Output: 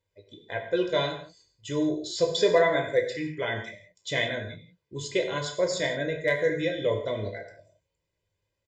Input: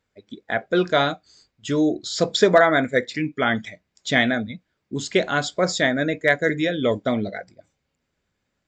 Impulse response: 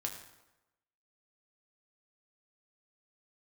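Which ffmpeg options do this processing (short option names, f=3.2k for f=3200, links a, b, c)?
-filter_complex "[0:a]equalizer=f=1.4k:w=4.7:g=-12.5,aecho=1:1:2:0.75[a];[1:a]atrim=start_sample=2205,afade=t=out:st=0.24:d=0.01,atrim=end_sample=11025[b];[a][b]afir=irnorm=-1:irlink=0,volume=-7.5dB"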